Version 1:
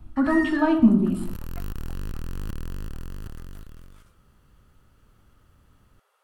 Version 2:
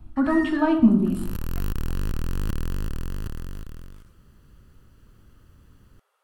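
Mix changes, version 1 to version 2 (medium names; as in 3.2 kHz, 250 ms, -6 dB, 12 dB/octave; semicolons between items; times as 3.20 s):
first sound -3.0 dB; second sound +5.5 dB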